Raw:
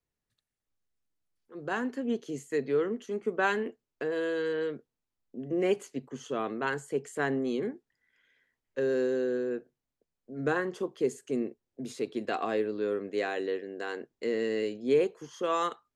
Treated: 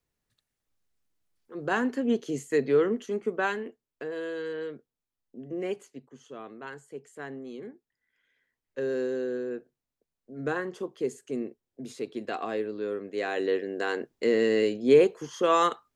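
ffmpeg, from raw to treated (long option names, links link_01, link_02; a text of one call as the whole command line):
ffmpeg -i in.wav -af "volume=21.5dB,afade=type=out:start_time=2.93:duration=0.66:silence=0.375837,afade=type=out:start_time=5.43:duration=0.71:silence=0.473151,afade=type=in:start_time=7.53:duration=1.32:silence=0.375837,afade=type=in:start_time=13.16:duration=0.43:silence=0.398107" out.wav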